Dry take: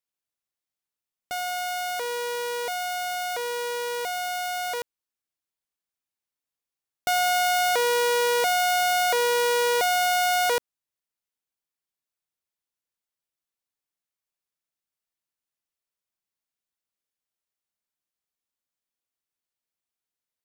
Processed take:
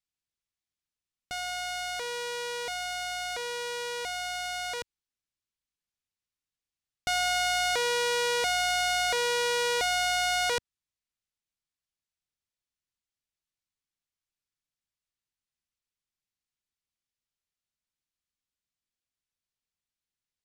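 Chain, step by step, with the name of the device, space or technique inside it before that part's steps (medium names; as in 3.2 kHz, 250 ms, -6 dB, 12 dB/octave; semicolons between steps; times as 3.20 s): distance through air 74 m; smiley-face EQ (bass shelf 150 Hz +6.5 dB; peaking EQ 630 Hz -9 dB 2.7 oct; treble shelf 7.1 kHz +5.5 dB); trim +1.5 dB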